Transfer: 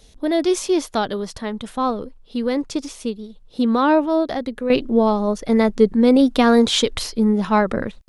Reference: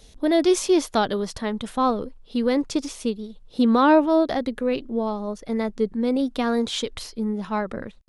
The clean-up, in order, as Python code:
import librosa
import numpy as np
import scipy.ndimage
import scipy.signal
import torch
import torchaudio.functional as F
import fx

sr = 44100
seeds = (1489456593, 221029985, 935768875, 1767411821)

y = fx.gain(x, sr, db=fx.steps((0.0, 0.0), (4.7, -9.0)))